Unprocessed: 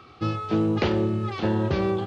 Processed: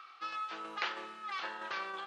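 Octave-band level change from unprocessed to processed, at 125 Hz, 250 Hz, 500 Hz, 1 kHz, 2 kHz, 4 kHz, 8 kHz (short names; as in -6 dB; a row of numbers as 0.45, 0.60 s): under -40 dB, -31.0 dB, -23.5 dB, -6.5 dB, -3.0 dB, -5.5 dB, n/a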